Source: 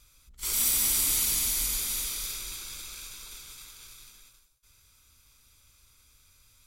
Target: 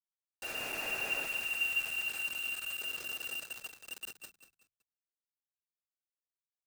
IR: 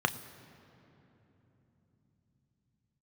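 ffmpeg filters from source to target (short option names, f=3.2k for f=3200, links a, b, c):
-filter_complex "[0:a]asubboost=boost=3.5:cutoff=70,lowpass=f=2.4k:t=q:w=0.5098,lowpass=f=2.4k:t=q:w=0.6013,lowpass=f=2.4k:t=q:w=0.9,lowpass=f=2.4k:t=q:w=2.563,afreqshift=-2800,asettb=1/sr,asplit=3[a][b][c];[a]atrim=end=1.264[d];[b]atrim=start=1.26:end=2.81,asetpts=PTS-STARTPTS,afade=t=in:d=0.004:c=qsin,afade=t=out:st=1.546:d=0.004:c=qsin,equalizer=f=390:t=o:w=2.6:g=-13[e];[c]atrim=start=2.806[f];[d][e]acrossfade=d=0.004:c1=hsin:c2=qsin[g];[g][f]acrossfade=d=0.004:c1=qsin:c2=hsin,acrusher=bits=6:mix=0:aa=0.000001,bandreject=f=50:t=h:w=6,bandreject=f=100:t=h:w=6,bandreject=f=150:t=h:w=6,bandreject=f=200:t=h:w=6,asplit=2[h][i];[i]asplit=3[j][k][l];[j]adelay=188,afreqshift=-35,volume=-10.5dB[m];[k]adelay=376,afreqshift=-70,volume=-20.4dB[n];[l]adelay=564,afreqshift=-105,volume=-30.3dB[o];[m][n][o]amix=inputs=3:normalize=0[p];[h][p]amix=inputs=2:normalize=0"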